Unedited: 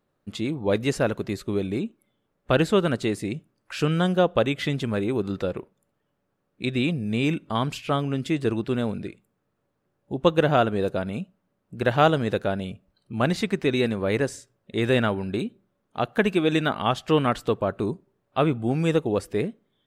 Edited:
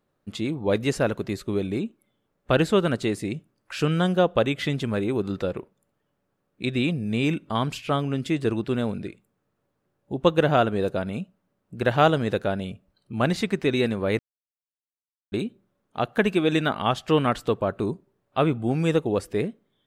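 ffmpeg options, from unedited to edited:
-filter_complex "[0:a]asplit=3[a][b][c];[a]atrim=end=14.19,asetpts=PTS-STARTPTS,afade=t=out:st=14.186:d=0.004:c=hsin[d];[b]atrim=start=14.19:end=15.32,asetpts=PTS-STARTPTS,volume=0[e];[c]atrim=start=15.32,asetpts=PTS-STARTPTS,afade=t=in:d=0.004:c=hsin[f];[d][e][f]concat=n=3:v=0:a=1"

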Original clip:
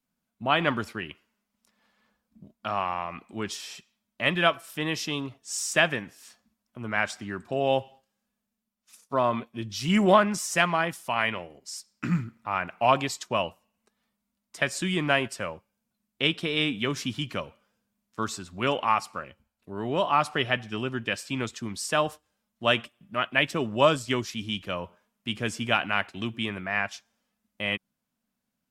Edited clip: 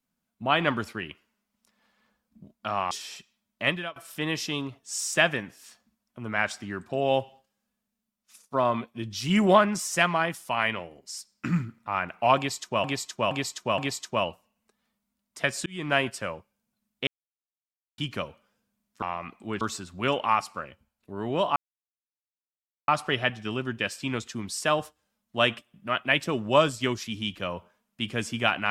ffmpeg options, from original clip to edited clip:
-filter_complex "[0:a]asplit=12[a][b][c][d][e][f][g][h][i][j][k][l];[a]atrim=end=2.912[m];[b]atrim=start=3.498:end=4.55,asetpts=PTS-STARTPTS,afade=t=out:st=0.772:d=0.28:c=qua:silence=0.112202[n];[c]atrim=start=4.55:end=13.432,asetpts=PTS-STARTPTS,afade=t=in:d=0.004:c=hsin:silence=0.112202[o];[d]atrim=start=12.958:end=13.432[p];[e]atrim=start=12.958:end=13.432[q];[f]atrim=start=12.958:end=14.84,asetpts=PTS-STARTPTS,afade=t=out:st=1.878:d=0.004:c=hsin[r];[g]atrim=start=14.84:end=16.25,asetpts=PTS-STARTPTS,afade=t=in:d=0.31,afade=t=out:st=1.406:d=0.004:c=hsin[s];[h]atrim=start=16.25:end=17.16,asetpts=PTS-STARTPTS,volume=0[t];[i]atrim=start=17.16:end=18.202,asetpts=PTS-STARTPTS,afade=t=in:d=0.004:c=hsin[u];[j]atrim=start=2.908:end=3.502[v];[k]atrim=start=18.198:end=20.15,asetpts=PTS-STARTPTS,afade=t=out:st=1.948:d=0.004:c=hsin,apad=pad_dur=1.32[w];[l]atrim=start=20.15,asetpts=PTS-STARTPTS,afade=t=in:d=0.004:c=hsin[x];[n][o]concat=n=2:v=0:a=1[y];[m][y]acrossfade=d=0.004:c1=hsin:c2=hsin[z];[z][p]acrossfade=d=0.004:c1=hsin:c2=hsin[aa];[aa][q]acrossfade=d=0.004:c1=hsin:c2=hsin[ab];[r][s][t][u]concat=n=4:v=0:a=1[ac];[ab][ac]acrossfade=d=0.004:c1=hsin:c2=hsin[ad];[ad][v]acrossfade=d=0.004:c1=hsin:c2=hsin[ae];[w][x]concat=n=2:v=0:a=1[af];[ae][af]acrossfade=d=0.004:c1=hsin:c2=hsin"

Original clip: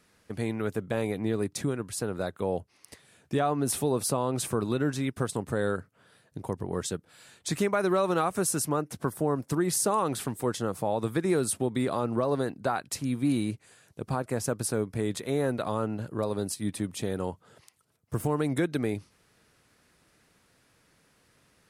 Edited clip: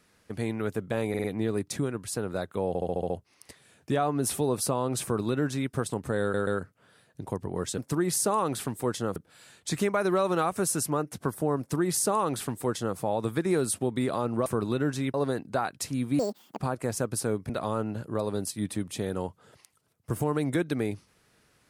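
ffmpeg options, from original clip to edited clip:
-filter_complex "[0:a]asplit=19[a][b][c][d][e][f][g][h][i][j][k][l][m][n][o][p][q][r][s];[a]atrim=end=1.142[t];[b]atrim=start=1.088:end=1.142[u];[c]atrim=start=1.088:end=1.142[v];[d]atrim=start=1.088:end=2.602[w];[e]atrim=start=2.528:end=2.602[x];[f]atrim=start=2.528:end=2.602[y];[g]atrim=start=2.528:end=2.602[z];[h]atrim=start=2.528:end=2.602[aa];[i]atrim=start=2.528:end=2.602[ab];[j]atrim=start=2.528:end=5.772[ac];[k]atrim=start=5.638:end=5.772[ad];[l]atrim=start=5.638:end=6.952[ae];[m]atrim=start=9.378:end=10.762[af];[n]atrim=start=6.948:end=12.252[ag];[o]atrim=start=4.458:end=5.142[ah];[p]atrim=start=12.248:end=13.304[ai];[q]atrim=start=13.3:end=14.06,asetpts=PTS-STARTPTS,asetrate=85113,aresample=44100[aj];[r]atrim=start=14.056:end=14.972[ak];[s]atrim=start=15.528[al];[t][u]acrossfade=d=0.004:c1=hsin:c2=hsin[am];[am][v]acrossfade=d=0.004:c1=hsin:c2=hsin[an];[an][w]acrossfade=d=0.004:c1=hsin:c2=hsin[ao];[ao][x]acrossfade=d=0.004:c1=hsin:c2=hsin[ap];[ap][y]acrossfade=d=0.004:c1=hsin:c2=hsin[aq];[aq][z]acrossfade=d=0.004:c1=hsin:c2=hsin[ar];[ar][aa]acrossfade=d=0.004:c1=hsin:c2=hsin[as];[as][ab]acrossfade=d=0.004:c1=hsin:c2=hsin[at];[at][ac]acrossfade=d=0.004:c1=hsin:c2=hsin[au];[au][ad]acrossfade=d=0.004:c1=hsin:c2=hsin[av];[av][ae]acrossfade=d=0.004:c1=hsin:c2=hsin[aw];[aw][af]acrossfade=d=0.004:c1=hsin:c2=hsin[ax];[ax][ag]acrossfade=d=0.004:c1=hsin:c2=hsin[ay];[ay][ah]acrossfade=d=0.004:c1=hsin:c2=hsin[az];[az][ai]acrossfade=d=0.004:c1=hsin:c2=hsin[ba];[ba][aj]acrossfade=d=0.004:c1=hsin:c2=hsin[bb];[bb][ak]acrossfade=d=0.004:c1=hsin:c2=hsin[bc];[bc][al]acrossfade=d=0.004:c1=hsin:c2=hsin"

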